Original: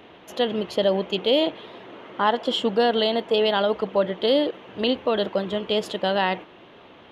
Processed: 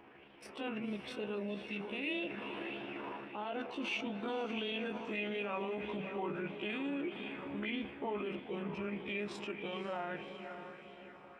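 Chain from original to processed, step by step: Doppler pass-by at 2.96, 16 m/s, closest 5.9 m; granular stretch 1.6×, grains 77 ms; reverse; compressor 6:1, threshold -40 dBFS, peak gain reduction 20 dB; reverse; formant shift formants -4 st; on a send: diffused feedback echo 0.533 s, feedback 47%, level -11.5 dB; on the sum: limiter -38.5 dBFS, peak gain reduction 11.5 dB; LFO bell 1.6 Hz 920–3600 Hz +8 dB; gain +7.5 dB

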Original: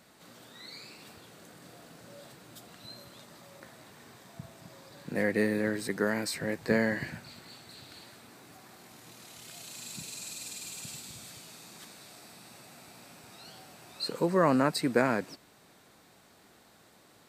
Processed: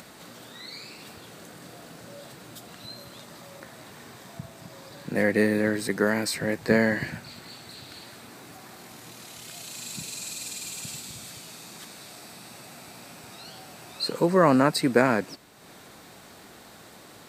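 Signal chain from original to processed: upward compressor, threshold -46 dBFS; gain +5.5 dB

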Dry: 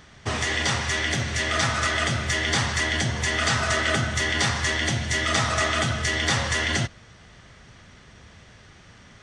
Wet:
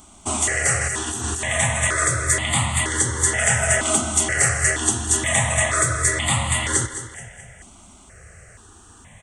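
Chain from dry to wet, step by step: resonant high shelf 6400 Hz +9.5 dB, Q 3; 0.81–1.44 negative-ratio compressor -28 dBFS, ratio -1; feedback echo 0.214 s, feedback 48%, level -12 dB; step phaser 2.1 Hz 480–1600 Hz; gain +5 dB

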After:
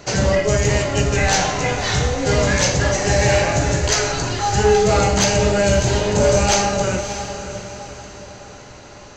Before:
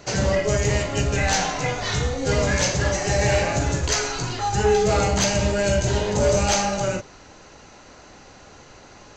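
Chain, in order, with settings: diffused feedback echo 0.603 s, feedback 42%, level -10 dB; gain +4 dB

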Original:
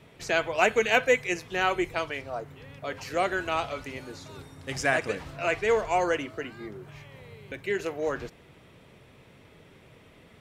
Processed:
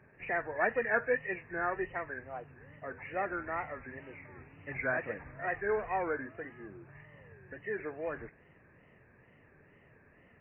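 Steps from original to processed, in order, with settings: nonlinear frequency compression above 1600 Hz 4:1; wow and flutter 130 cents; gain -8 dB

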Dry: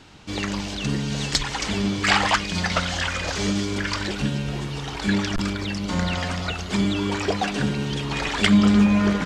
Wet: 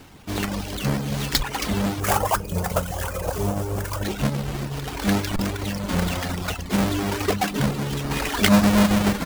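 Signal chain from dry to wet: half-waves squared off; reverb removal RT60 0.66 s; 2–4.03 graphic EQ 125/250/500/2000/4000 Hz +5/-10/+6/-9/-11 dB; reverb RT60 0.40 s, pre-delay 4 ms, DRR 18.5 dB; gain -2.5 dB

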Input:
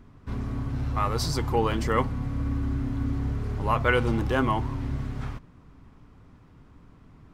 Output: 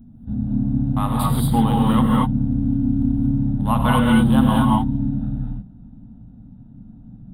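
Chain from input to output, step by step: Wiener smoothing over 41 samples; EQ curve 100 Hz 0 dB, 230 Hz +13 dB, 380 Hz -13 dB, 780 Hz +4 dB, 2300 Hz -10 dB, 3600 Hz +10 dB, 5800 Hz -29 dB, 9100 Hz +14 dB; non-linear reverb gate 0.26 s rising, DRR -3 dB; gain +2 dB

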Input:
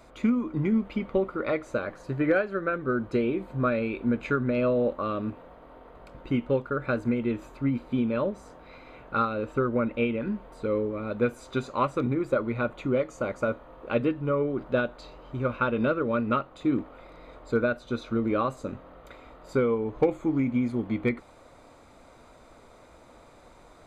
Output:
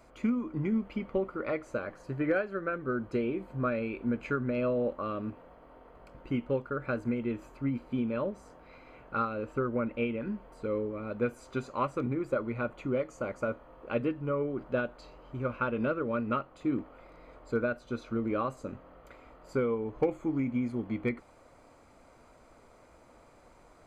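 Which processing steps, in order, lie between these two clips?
notch 3700 Hz, Q 6.5; gain -5 dB

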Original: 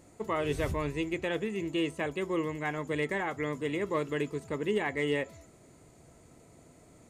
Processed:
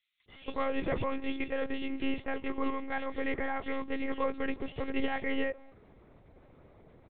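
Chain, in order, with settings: bands offset in time highs, lows 0.28 s, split 3000 Hz; monotone LPC vocoder at 8 kHz 270 Hz

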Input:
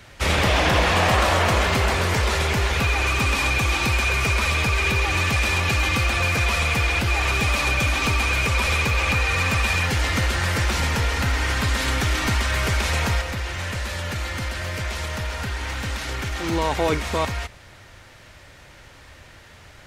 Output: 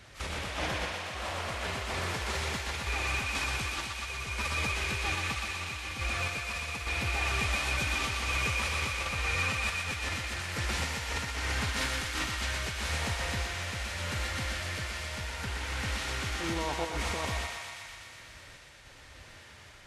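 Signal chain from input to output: random-step tremolo; negative-ratio compressor -26 dBFS, ratio -0.5; thinning echo 0.122 s, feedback 80%, high-pass 560 Hz, level -4 dB; gain -7.5 dB; Vorbis 32 kbps 32000 Hz

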